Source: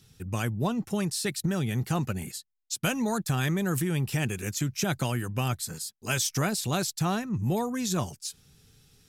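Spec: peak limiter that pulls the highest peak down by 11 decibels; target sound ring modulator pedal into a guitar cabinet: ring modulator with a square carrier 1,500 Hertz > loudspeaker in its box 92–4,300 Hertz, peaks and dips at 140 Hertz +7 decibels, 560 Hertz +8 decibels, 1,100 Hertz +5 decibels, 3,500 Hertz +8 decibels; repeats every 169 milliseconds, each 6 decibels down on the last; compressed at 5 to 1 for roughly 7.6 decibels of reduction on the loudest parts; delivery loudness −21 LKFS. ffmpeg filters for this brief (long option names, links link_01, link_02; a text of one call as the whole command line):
ffmpeg -i in.wav -af "acompressor=threshold=-32dB:ratio=5,alimiter=level_in=7dB:limit=-24dB:level=0:latency=1,volume=-7dB,aecho=1:1:169|338|507|676|845|1014:0.501|0.251|0.125|0.0626|0.0313|0.0157,aeval=exprs='val(0)*sgn(sin(2*PI*1500*n/s))':channel_layout=same,highpass=92,equalizer=frequency=140:width_type=q:width=4:gain=7,equalizer=frequency=560:width_type=q:width=4:gain=8,equalizer=frequency=1100:width_type=q:width=4:gain=5,equalizer=frequency=3500:width_type=q:width=4:gain=8,lowpass=frequency=4300:width=0.5412,lowpass=frequency=4300:width=1.3066,volume=15dB" out.wav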